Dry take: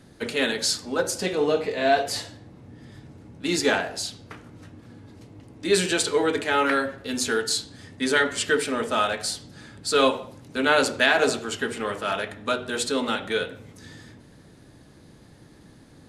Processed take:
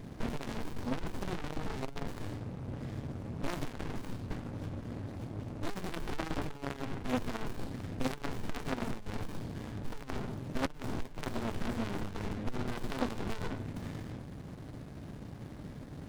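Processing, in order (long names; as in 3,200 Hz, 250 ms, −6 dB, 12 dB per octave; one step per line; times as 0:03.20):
tube saturation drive 25 dB, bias 0.65
windowed peak hold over 65 samples
level +11 dB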